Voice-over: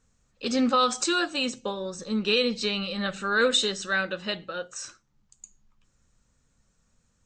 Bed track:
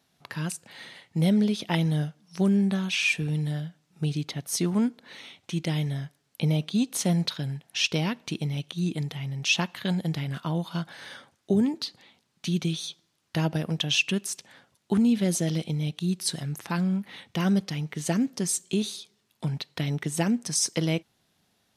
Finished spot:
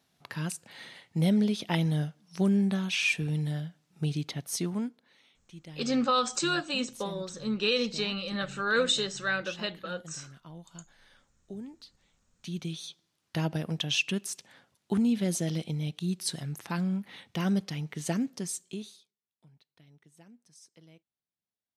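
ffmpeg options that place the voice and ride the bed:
-filter_complex "[0:a]adelay=5350,volume=-3.5dB[a];[1:a]volume=12dB,afade=t=out:st=4.38:d=0.74:silence=0.158489,afade=t=in:st=12:d=1.28:silence=0.188365,afade=t=out:st=18.1:d=1.04:silence=0.0473151[b];[a][b]amix=inputs=2:normalize=0"

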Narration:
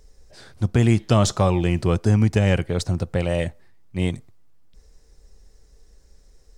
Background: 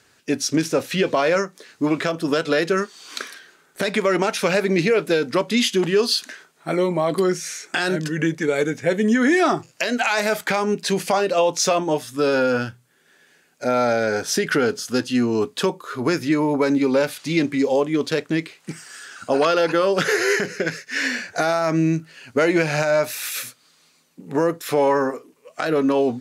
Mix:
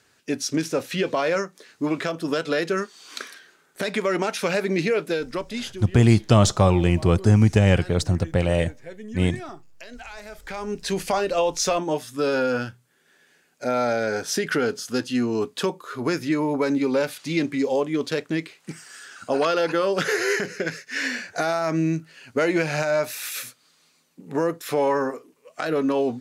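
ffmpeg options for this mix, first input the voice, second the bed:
-filter_complex "[0:a]adelay=5200,volume=1.5dB[a];[1:a]volume=12dB,afade=t=out:st=4.93:d=0.92:silence=0.16788,afade=t=in:st=10.39:d=0.6:silence=0.158489[b];[a][b]amix=inputs=2:normalize=0"

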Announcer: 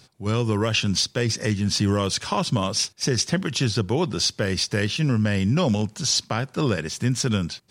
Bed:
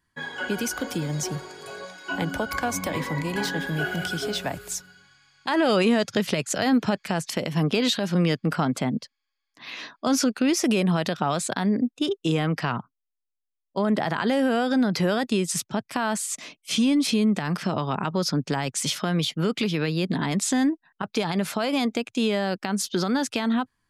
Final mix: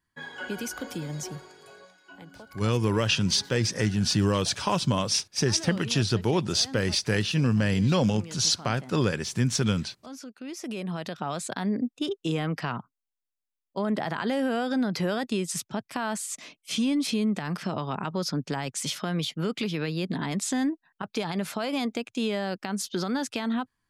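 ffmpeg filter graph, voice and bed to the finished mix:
-filter_complex "[0:a]adelay=2350,volume=-2dB[a];[1:a]volume=9.5dB,afade=t=out:st=1.13:d=1:silence=0.199526,afade=t=in:st=10.35:d=1.35:silence=0.16788[b];[a][b]amix=inputs=2:normalize=0"

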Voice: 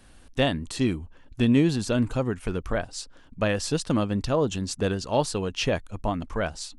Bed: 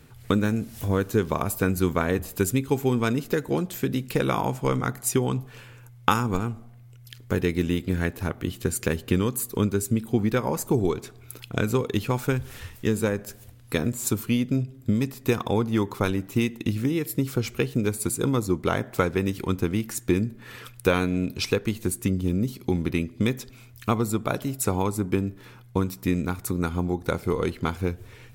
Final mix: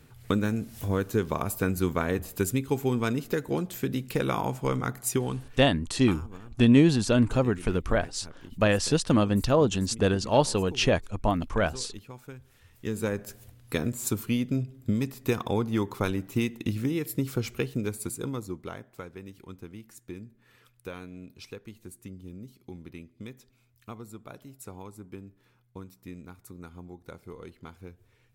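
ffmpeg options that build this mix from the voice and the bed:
-filter_complex "[0:a]adelay=5200,volume=2dB[a];[1:a]volume=12.5dB,afade=t=out:st=5.12:d=0.67:silence=0.158489,afade=t=in:st=12.64:d=0.5:silence=0.158489,afade=t=out:st=17.4:d=1.48:silence=0.177828[b];[a][b]amix=inputs=2:normalize=0"

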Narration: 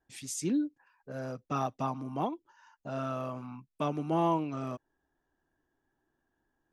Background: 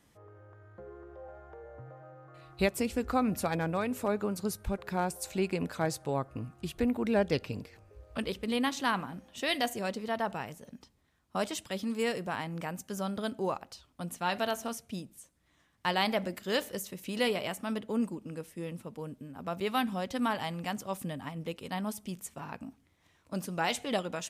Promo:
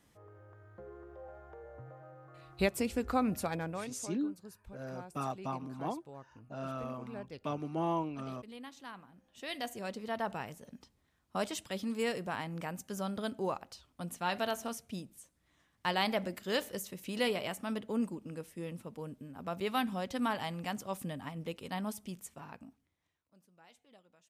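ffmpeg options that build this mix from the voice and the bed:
-filter_complex "[0:a]adelay=3650,volume=-5dB[a];[1:a]volume=13.5dB,afade=t=out:st=3.25:d=0.87:silence=0.158489,afade=t=in:st=9.13:d=1.22:silence=0.16788,afade=t=out:st=21.86:d=1.47:silence=0.0398107[b];[a][b]amix=inputs=2:normalize=0"

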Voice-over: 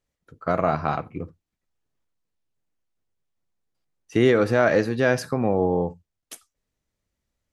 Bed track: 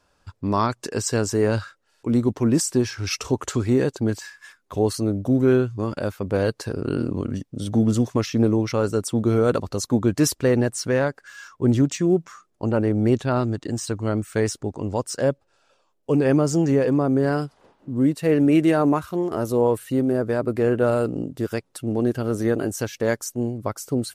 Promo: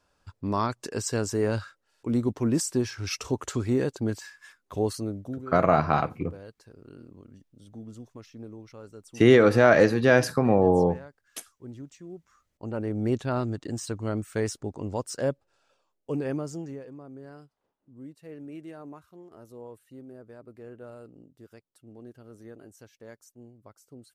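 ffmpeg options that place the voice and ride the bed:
-filter_complex "[0:a]adelay=5050,volume=1.5dB[a];[1:a]volume=12dB,afade=t=out:st=4.83:d=0.63:silence=0.125893,afade=t=in:st=12.26:d=0.96:silence=0.133352,afade=t=out:st=15.59:d=1.27:silence=0.11885[b];[a][b]amix=inputs=2:normalize=0"

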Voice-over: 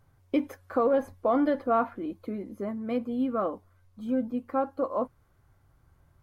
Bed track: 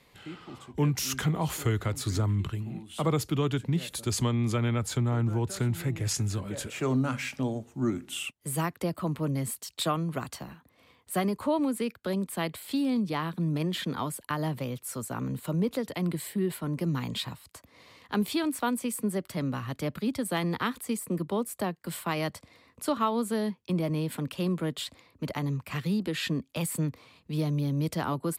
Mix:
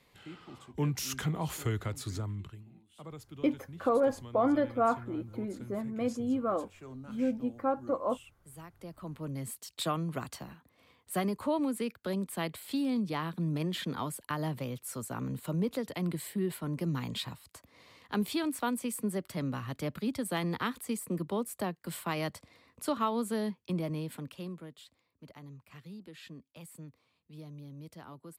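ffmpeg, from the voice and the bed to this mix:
-filter_complex "[0:a]adelay=3100,volume=-2.5dB[a];[1:a]volume=11dB,afade=t=out:st=1.79:d=0.92:silence=0.188365,afade=t=in:st=8.72:d=1.25:silence=0.158489,afade=t=out:st=23.58:d=1.15:silence=0.177828[b];[a][b]amix=inputs=2:normalize=0"

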